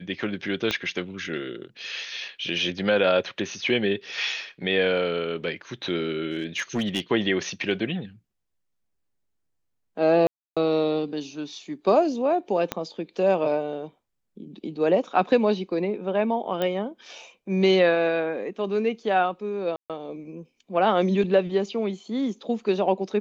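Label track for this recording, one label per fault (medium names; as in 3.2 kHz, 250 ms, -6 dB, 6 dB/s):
0.710000	0.710000	pop -11 dBFS
6.310000	7.000000	clipped -20.5 dBFS
10.270000	10.570000	dropout 296 ms
12.720000	12.720000	pop -11 dBFS
16.620000	16.620000	pop -14 dBFS
19.760000	19.900000	dropout 137 ms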